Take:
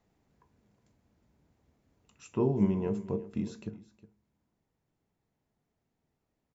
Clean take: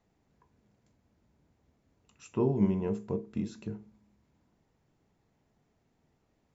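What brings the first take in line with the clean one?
inverse comb 363 ms -17.5 dB; trim 0 dB, from 3.69 s +8.5 dB

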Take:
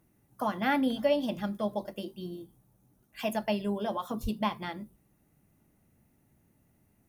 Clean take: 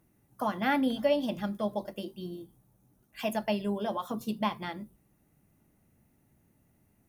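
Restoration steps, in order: 4.22–4.34 s: high-pass 140 Hz 24 dB/octave

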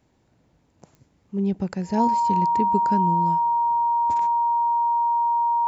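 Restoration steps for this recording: de-click; band-stop 940 Hz, Q 30

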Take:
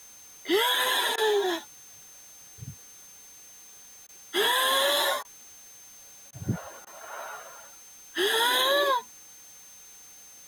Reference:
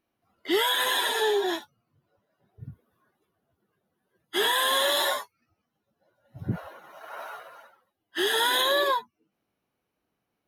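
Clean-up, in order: band-stop 6.3 kHz, Q 30; interpolate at 1.16/4.07/5.23/6.31/6.85 s, 17 ms; noise print and reduce 30 dB

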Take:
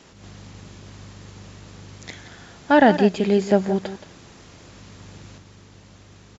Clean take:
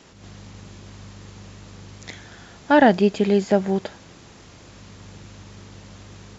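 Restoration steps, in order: inverse comb 173 ms -12.5 dB; gain correction +5 dB, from 5.38 s

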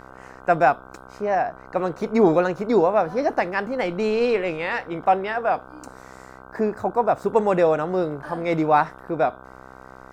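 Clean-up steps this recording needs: de-hum 64.5 Hz, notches 24

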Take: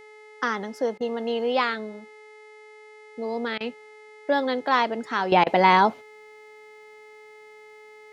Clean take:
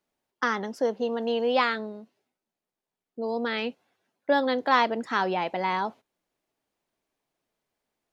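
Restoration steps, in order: de-hum 428.4 Hz, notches 25; band-stop 2.1 kHz, Q 30; interpolate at 0.98/3.58/5.44 s, 24 ms; gain correction -10.5 dB, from 5.32 s

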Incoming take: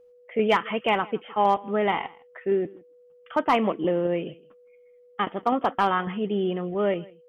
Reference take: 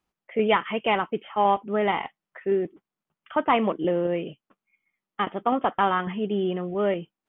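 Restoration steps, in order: clip repair -11.5 dBFS; band-stop 490 Hz, Q 30; inverse comb 161 ms -23 dB

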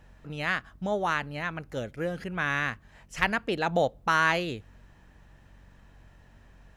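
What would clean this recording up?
de-hum 46.3 Hz, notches 5

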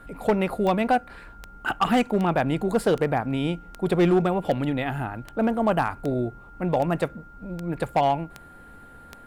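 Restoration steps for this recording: clip repair -14 dBFS; de-click; band-stop 1.4 kHz, Q 30

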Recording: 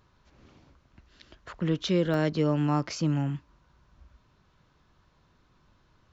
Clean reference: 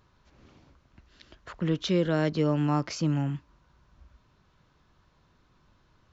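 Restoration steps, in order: interpolate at 2.14 s, 1.7 ms

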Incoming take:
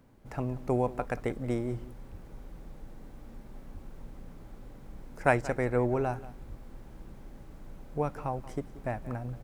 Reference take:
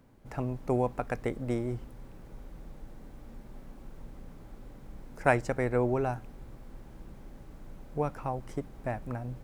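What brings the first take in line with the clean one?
de-plosive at 2.11/3.73/6.48 s; inverse comb 181 ms -17.5 dB

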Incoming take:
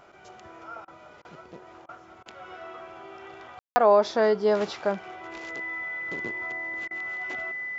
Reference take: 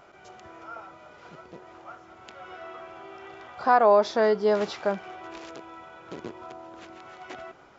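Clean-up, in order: band-stop 2 kHz, Q 30; room tone fill 3.59–3.76 s; interpolate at 0.85/1.22/1.86/2.23/6.88 s, 27 ms

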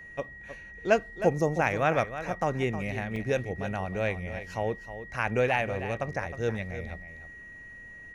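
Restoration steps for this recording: band-stop 1.9 kHz, Q 30; interpolate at 3.16 s, 2.8 ms; inverse comb 313 ms -11.5 dB

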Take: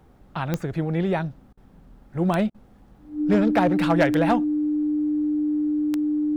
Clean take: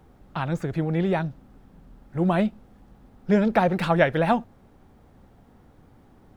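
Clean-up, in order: clip repair -12.5 dBFS; de-click; band-stop 300 Hz, Q 30; interpolate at 1.53/2.50 s, 42 ms

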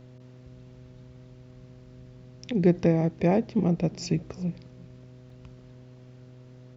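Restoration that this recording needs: de-hum 125.8 Hz, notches 5; interpolate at 5.30 s, 1.9 ms; inverse comb 355 ms -23 dB

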